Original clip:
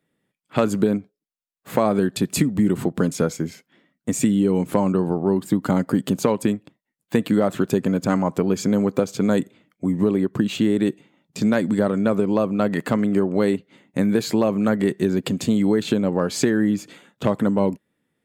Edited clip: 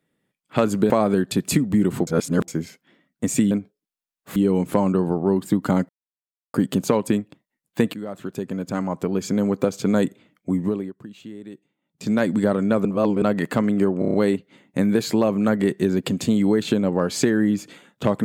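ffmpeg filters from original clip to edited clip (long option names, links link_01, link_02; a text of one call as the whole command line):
ffmpeg -i in.wav -filter_complex "[0:a]asplit=17[link_01][link_02][link_03][link_04][link_05][link_06][link_07][link_08][link_09][link_10][link_11][link_12][link_13][link_14][link_15][link_16][link_17];[link_01]atrim=end=0.902[link_18];[link_02]atrim=start=1.748:end=2.922[link_19];[link_03]atrim=start=2.918:end=3.332,asetpts=PTS-STARTPTS,areverse[link_20];[link_04]atrim=start=3.328:end=4.362[link_21];[link_05]atrim=start=0.898:end=1.752[link_22];[link_06]atrim=start=4.358:end=5.89,asetpts=PTS-STARTPTS,afade=type=out:start_time=1.528:duration=0.004:curve=hsin,apad=pad_dur=0.65[link_23];[link_07]atrim=start=5.89:end=7.29,asetpts=PTS-STARTPTS,afade=type=in:duration=0.004:curve=hsin,afade=type=out:start_time=1.396:duration=0.004:curve=hsin:silence=0.16788[link_24];[link_08]atrim=start=7.29:end=10.29,asetpts=PTS-STARTPTS,afade=type=in:duration=1.85:silence=0.16788,afade=type=out:start_time=2.58:duration=0.42:silence=0.11885[link_25];[link_09]atrim=start=10.29:end=11.16,asetpts=PTS-STARTPTS,volume=-18.5dB[link_26];[link_10]atrim=start=11.16:end=12.202,asetpts=PTS-STARTPTS,afade=type=in:duration=0.42:silence=0.11885[link_27];[link_11]atrim=start=12.198:end=12.572,asetpts=PTS-STARTPTS,areverse[link_28];[link_12]atrim=start=12.568:end=13.372[link_29];[link_13]atrim=start=13.338:end=13.372[link_30];[link_14]atrim=start=13.338:end=13.372[link_31];[link_15]atrim=start=13.338:end=13.372[link_32];[link_16]atrim=start=13.338:end=13.372[link_33];[link_17]atrim=start=13.338[link_34];[link_18][link_19]acrossfade=duration=0.004:curve1=hsin:curve2=hsin[link_35];[link_35][link_20]acrossfade=duration=0.004:curve1=hsin:curve2=hsin[link_36];[link_36][link_21]acrossfade=duration=0.004:curve1=hsin:curve2=hsin[link_37];[link_37][link_22]acrossfade=duration=0.004:curve1=hsin:curve2=hsin[link_38];[link_23][link_24][link_25][link_26][link_27]concat=n=5:v=0:a=1[link_39];[link_38][link_39]acrossfade=duration=0.004:curve1=hsin:curve2=hsin[link_40];[link_40][link_28]acrossfade=duration=0.004:curve1=hsin:curve2=hsin[link_41];[link_41][link_29]acrossfade=duration=0.004:curve1=hsin:curve2=hsin[link_42];[link_42][link_30]acrossfade=duration=0.004:curve1=hsin:curve2=hsin[link_43];[link_43][link_31]acrossfade=duration=0.004:curve1=hsin:curve2=hsin[link_44];[link_44][link_32]acrossfade=duration=0.004:curve1=hsin:curve2=hsin[link_45];[link_45][link_33]acrossfade=duration=0.004:curve1=hsin:curve2=hsin[link_46];[link_46][link_34]acrossfade=duration=0.004:curve1=hsin:curve2=hsin" out.wav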